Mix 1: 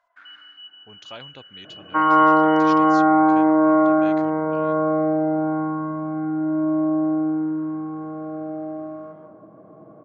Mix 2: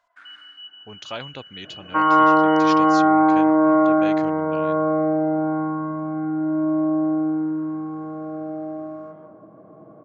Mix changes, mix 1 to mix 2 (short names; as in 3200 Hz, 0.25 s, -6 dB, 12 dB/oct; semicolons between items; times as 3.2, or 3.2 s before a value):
speech +7.0 dB; first sound: remove air absorption 100 m